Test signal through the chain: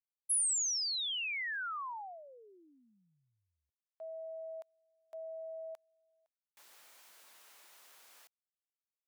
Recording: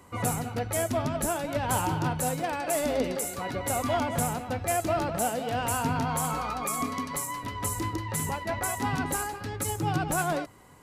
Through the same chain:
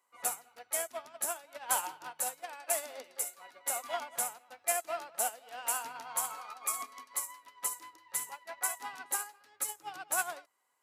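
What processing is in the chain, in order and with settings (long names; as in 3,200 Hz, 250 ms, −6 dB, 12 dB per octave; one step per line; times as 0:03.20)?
high-pass filter 780 Hz 12 dB per octave
high-shelf EQ 8,100 Hz +5 dB
expander for the loud parts 2.5 to 1, over −39 dBFS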